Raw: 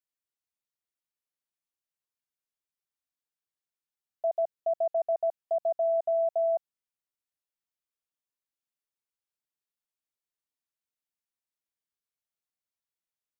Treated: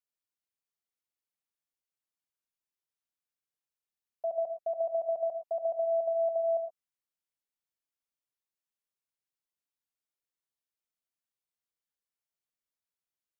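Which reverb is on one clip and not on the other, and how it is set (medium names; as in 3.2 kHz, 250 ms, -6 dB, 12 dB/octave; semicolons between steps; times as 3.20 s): gated-style reverb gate 140 ms rising, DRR 6.5 dB; trim -4 dB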